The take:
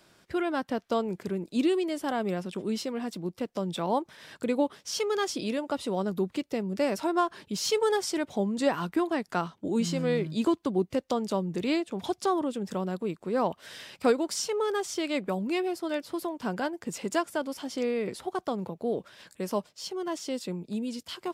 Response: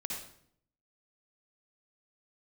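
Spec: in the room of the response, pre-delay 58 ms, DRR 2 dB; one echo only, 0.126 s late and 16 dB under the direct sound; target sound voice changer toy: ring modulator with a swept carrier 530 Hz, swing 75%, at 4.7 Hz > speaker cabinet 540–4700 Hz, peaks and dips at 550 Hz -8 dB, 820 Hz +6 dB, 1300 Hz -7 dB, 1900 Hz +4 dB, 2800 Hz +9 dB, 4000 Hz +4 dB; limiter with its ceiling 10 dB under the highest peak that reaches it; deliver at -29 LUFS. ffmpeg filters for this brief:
-filter_complex "[0:a]alimiter=limit=-22.5dB:level=0:latency=1,aecho=1:1:126:0.158,asplit=2[a][b];[1:a]atrim=start_sample=2205,adelay=58[c];[b][c]afir=irnorm=-1:irlink=0,volume=-3dB[d];[a][d]amix=inputs=2:normalize=0,aeval=exprs='val(0)*sin(2*PI*530*n/s+530*0.75/4.7*sin(2*PI*4.7*n/s))':c=same,highpass=540,equalizer=f=550:t=q:w=4:g=-8,equalizer=f=820:t=q:w=4:g=6,equalizer=f=1.3k:t=q:w=4:g=-7,equalizer=f=1.9k:t=q:w=4:g=4,equalizer=f=2.8k:t=q:w=4:g=9,equalizer=f=4k:t=q:w=4:g=4,lowpass=f=4.7k:w=0.5412,lowpass=f=4.7k:w=1.3066,volume=6dB"

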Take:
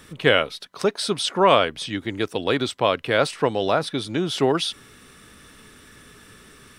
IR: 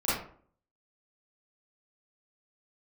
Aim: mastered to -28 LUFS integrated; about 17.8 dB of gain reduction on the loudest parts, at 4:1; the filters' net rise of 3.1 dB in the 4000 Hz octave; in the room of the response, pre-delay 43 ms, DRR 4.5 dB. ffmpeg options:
-filter_complex "[0:a]equalizer=f=4k:t=o:g=4,acompressor=threshold=-33dB:ratio=4,asplit=2[a][b];[1:a]atrim=start_sample=2205,adelay=43[c];[b][c]afir=irnorm=-1:irlink=0,volume=-15dB[d];[a][d]amix=inputs=2:normalize=0,volume=5.5dB"

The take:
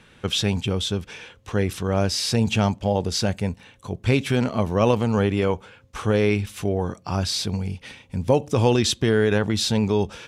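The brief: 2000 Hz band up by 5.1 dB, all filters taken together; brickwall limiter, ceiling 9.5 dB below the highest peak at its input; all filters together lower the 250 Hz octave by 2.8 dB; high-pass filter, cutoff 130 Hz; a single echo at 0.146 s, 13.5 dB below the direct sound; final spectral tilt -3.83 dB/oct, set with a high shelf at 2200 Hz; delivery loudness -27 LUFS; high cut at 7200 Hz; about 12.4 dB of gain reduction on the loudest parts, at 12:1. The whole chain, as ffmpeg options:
-af "highpass=130,lowpass=7.2k,equalizer=f=250:t=o:g=-3,equalizer=f=2k:t=o:g=5,highshelf=f=2.2k:g=3,acompressor=threshold=-26dB:ratio=12,alimiter=limit=-22dB:level=0:latency=1,aecho=1:1:146:0.211,volume=6.5dB"

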